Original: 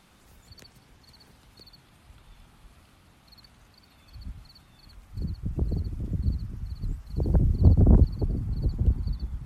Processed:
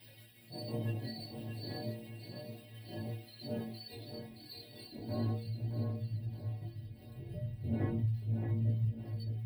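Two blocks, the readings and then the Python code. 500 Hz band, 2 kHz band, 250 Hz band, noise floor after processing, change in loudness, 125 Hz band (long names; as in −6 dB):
−5.0 dB, can't be measured, −8.0 dB, −56 dBFS, −13.0 dB, −9.0 dB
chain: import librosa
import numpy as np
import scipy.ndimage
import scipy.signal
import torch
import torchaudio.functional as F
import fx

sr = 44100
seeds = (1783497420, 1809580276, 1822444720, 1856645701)

y = x + 0.5 * 10.0 ** (-24.0 / 20.0) * np.sign(x)
y = fx.dmg_wind(y, sr, seeds[0], corner_hz=410.0, level_db=-25.0)
y = fx.peak_eq(y, sr, hz=450.0, db=-8.5, octaves=0.22)
y = fx.fixed_phaser(y, sr, hz=2900.0, stages=4)
y = fx.tremolo_shape(y, sr, shape='saw_down', hz=5.9, depth_pct=50)
y = fx.noise_reduce_blind(y, sr, reduce_db=13)
y = fx.low_shelf(y, sr, hz=74.0, db=-11.5)
y = fx.stiff_resonator(y, sr, f0_hz=110.0, decay_s=0.55, stiffness=0.008)
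y = fx.echo_feedback(y, sr, ms=621, feedback_pct=42, wet_db=-6.0)
y = fx.chorus_voices(y, sr, voices=2, hz=0.34, base_ms=20, depth_ms=3.4, mix_pct=45)
y = scipy.signal.sosfilt(scipy.signal.butter(2, 45.0, 'highpass', fs=sr, output='sos'), y)
y = y + 0.78 * np.pad(y, (int(7.2 * sr / 1000.0), 0))[:len(y)]
y = F.gain(torch.from_numpy(y), 4.0).numpy()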